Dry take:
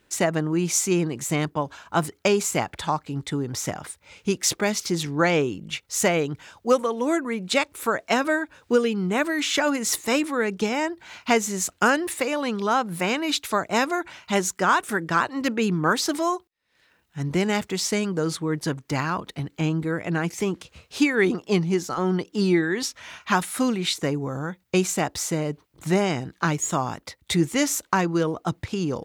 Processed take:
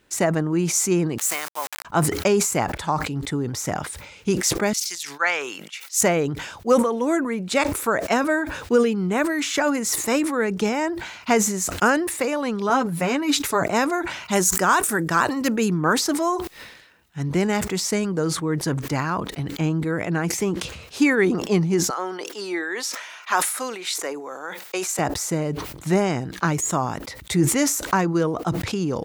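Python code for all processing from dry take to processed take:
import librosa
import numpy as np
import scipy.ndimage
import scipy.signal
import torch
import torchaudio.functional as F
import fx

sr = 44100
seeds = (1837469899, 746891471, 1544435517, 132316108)

y = fx.chain(x, sr, fx.delta_hold(step_db=-33.5),
    fx.highpass(hz=960.0, slope=12),
    fx.high_shelf(hz=4600.0, db=8.5), at=(1.18, 1.85))
y = fx.chain(y, sr, fx.highpass(hz=1400.0, slope=12),
    fx.band_widen(depth_pct=100), at=(4.73, 6.01))
y = fx.chain(y, sr, fx.low_shelf(hz=230.0, db=6.5),
    fx.comb(ms=7.1, depth=0.64),
    fx.upward_expand(threshold_db=-40.0, expansion=1.5), at=(12.69, 13.63))
y = fx.chain(y, sr, fx.high_shelf(hz=5800.0, db=11.0),
    fx.notch(hz=2100.0, q=23.0), at=(14.31, 15.74))
y = fx.chain(y, sr, fx.bessel_highpass(hz=570.0, order=4),
    fx.sustainer(db_per_s=110.0), at=(21.9, 24.99))
y = fx.dynamic_eq(y, sr, hz=3300.0, q=1.3, threshold_db=-42.0, ratio=4.0, max_db=-6)
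y = fx.sustainer(y, sr, db_per_s=58.0)
y = F.gain(torch.from_numpy(y), 1.5).numpy()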